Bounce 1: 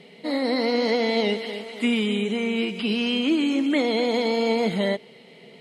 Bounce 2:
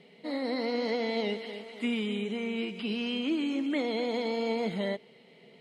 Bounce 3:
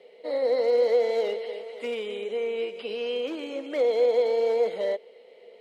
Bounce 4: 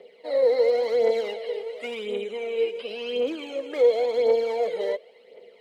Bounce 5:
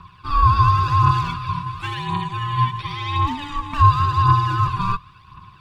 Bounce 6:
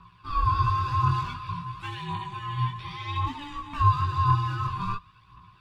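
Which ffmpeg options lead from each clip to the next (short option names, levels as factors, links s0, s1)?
-af "highshelf=f=6100:g=-6,volume=0.398"
-af "volume=16.8,asoftclip=hard,volume=0.0596,highpass=f=500:t=q:w=5.8,volume=0.794"
-af "aphaser=in_gain=1:out_gain=1:delay=2.5:decay=0.56:speed=0.93:type=triangular"
-af "aeval=exprs='val(0)*sin(2*PI*580*n/s)':c=same,volume=2.66"
-af "flanger=delay=17:depth=6.8:speed=0.56,volume=0.531"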